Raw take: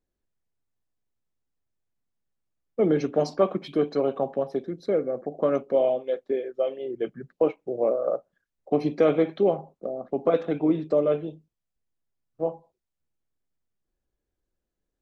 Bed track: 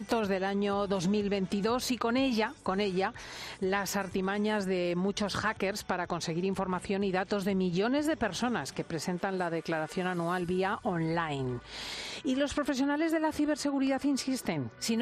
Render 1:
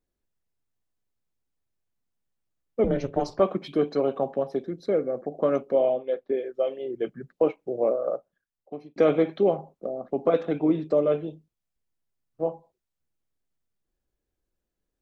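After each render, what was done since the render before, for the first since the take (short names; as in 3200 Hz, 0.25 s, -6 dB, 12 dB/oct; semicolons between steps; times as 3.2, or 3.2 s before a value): 2.84–3.4 ring modulator 140 Hz; 5.74–6.38 Gaussian blur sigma 1.9 samples; 7.88–8.96 fade out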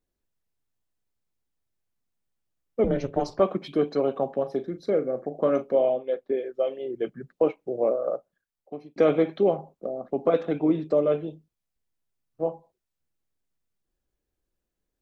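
4.39–5.79 doubler 39 ms -12 dB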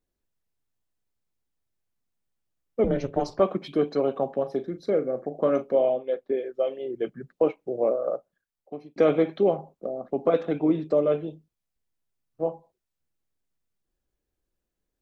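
nothing audible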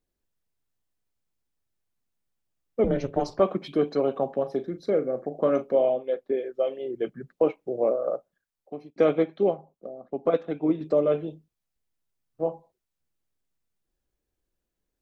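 8.9–10.81 upward expander, over -33 dBFS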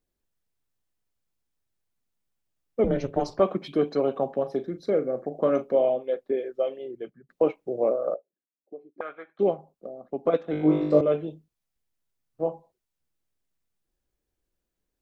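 6.57–7.29 fade out, to -23 dB; 8.14–9.39 auto-wah 260–1500 Hz, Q 3.8, up, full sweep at -23 dBFS; 10.51–11.01 flutter echo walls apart 3.4 m, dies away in 0.88 s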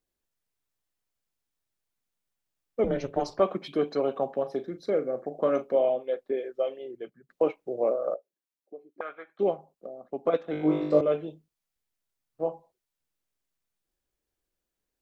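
low shelf 350 Hz -6.5 dB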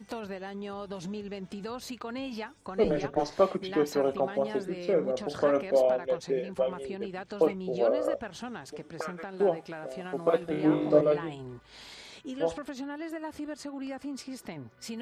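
add bed track -8.5 dB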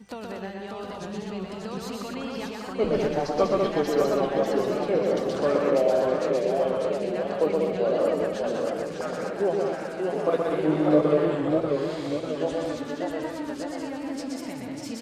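loudspeakers at several distances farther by 42 m -3 dB, 67 m -5 dB, 85 m -8 dB; warbling echo 0.591 s, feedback 53%, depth 150 cents, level -4.5 dB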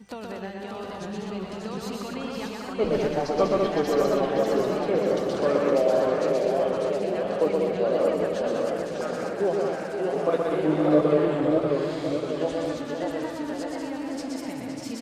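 echo 0.514 s -8.5 dB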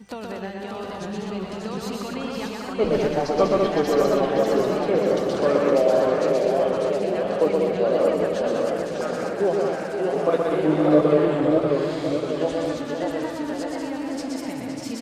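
gain +3 dB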